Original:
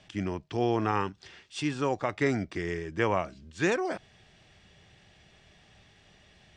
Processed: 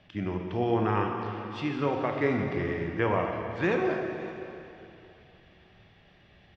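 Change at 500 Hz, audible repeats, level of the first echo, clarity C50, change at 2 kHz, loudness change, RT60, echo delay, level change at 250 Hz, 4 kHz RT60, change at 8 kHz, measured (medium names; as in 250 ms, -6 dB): +2.0 dB, 1, -17.5 dB, 2.5 dB, +0.5 dB, +1.0 dB, 2.8 s, 562 ms, +1.5 dB, 2.6 s, under -15 dB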